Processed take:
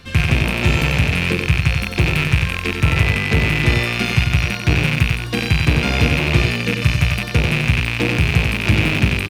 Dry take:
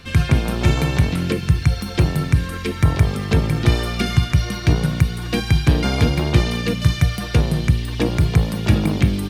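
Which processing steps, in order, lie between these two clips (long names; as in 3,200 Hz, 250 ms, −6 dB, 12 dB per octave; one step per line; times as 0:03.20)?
loose part that buzzes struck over −23 dBFS, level −7 dBFS
0:02.90–0:03.85: steady tone 2,000 Hz −29 dBFS
on a send: single-tap delay 93 ms −5 dB
on the sum: level −1 dB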